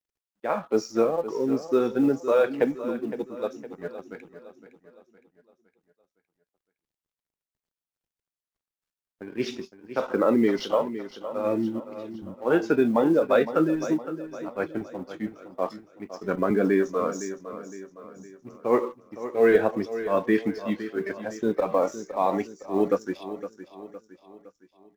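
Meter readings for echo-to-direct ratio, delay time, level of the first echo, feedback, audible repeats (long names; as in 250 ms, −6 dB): −11.5 dB, 512 ms, −12.5 dB, 46%, 4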